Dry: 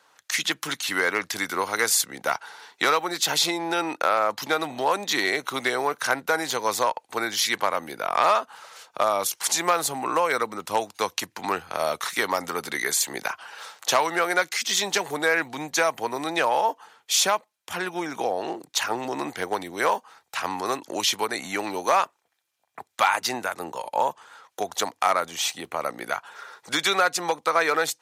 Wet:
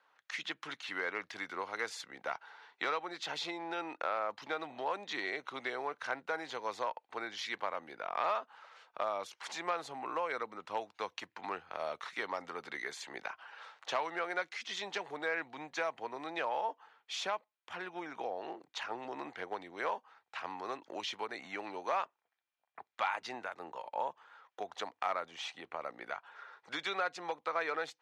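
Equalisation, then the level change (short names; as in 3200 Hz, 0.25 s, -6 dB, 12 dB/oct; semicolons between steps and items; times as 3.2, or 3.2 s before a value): LPF 2700 Hz 12 dB/oct; low shelf 360 Hz -10.5 dB; dynamic EQ 1400 Hz, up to -4 dB, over -34 dBFS, Q 0.72; -8.5 dB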